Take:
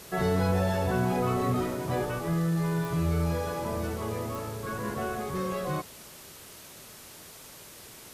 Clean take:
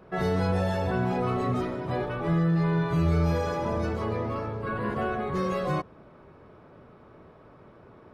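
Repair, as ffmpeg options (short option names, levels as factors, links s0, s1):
-af "adeclick=t=4,afwtdn=0.0045,asetnsamples=n=441:p=0,asendcmd='2.19 volume volume 3.5dB',volume=1"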